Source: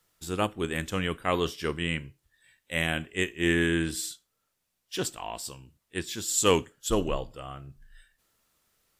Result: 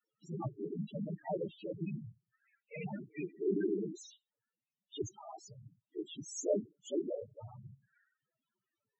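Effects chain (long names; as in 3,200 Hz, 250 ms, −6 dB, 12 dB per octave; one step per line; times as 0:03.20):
cochlear-implant simulation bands 12
spectral peaks only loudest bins 4
level −3.5 dB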